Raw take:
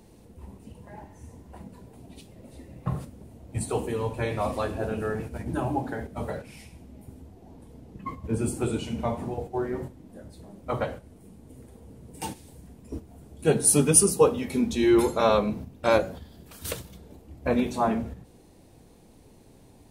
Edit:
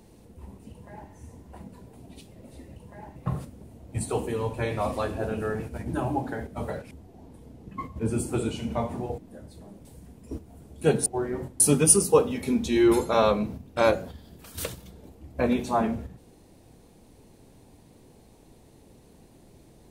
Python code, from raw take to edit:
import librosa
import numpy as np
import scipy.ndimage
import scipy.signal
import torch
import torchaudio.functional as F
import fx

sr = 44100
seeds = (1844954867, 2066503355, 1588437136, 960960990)

y = fx.edit(x, sr, fx.duplicate(start_s=0.71, length_s=0.4, to_s=2.76),
    fx.cut(start_s=6.51, length_s=0.68),
    fx.move(start_s=9.46, length_s=0.54, to_s=13.67),
    fx.cut(start_s=10.67, length_s=1.79), tone=tone)